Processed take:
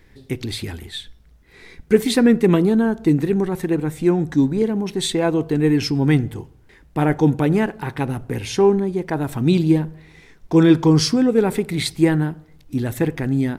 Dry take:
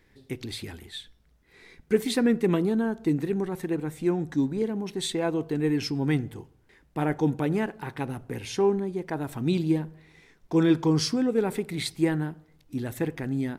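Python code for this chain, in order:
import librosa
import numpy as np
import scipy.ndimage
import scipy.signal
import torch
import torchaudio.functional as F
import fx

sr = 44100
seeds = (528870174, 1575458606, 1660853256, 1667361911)

y = fx.low_shelf(x, sr, hz=100.0, db=7.0)
y = y * librosa.db_to_amplitude(7.5)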